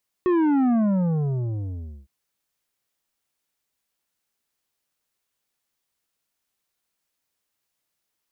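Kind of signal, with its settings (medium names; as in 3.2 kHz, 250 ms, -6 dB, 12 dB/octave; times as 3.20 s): sub drop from 370 Hz, over 1.81 s, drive 9 dB, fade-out 1.35 s, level -18 dB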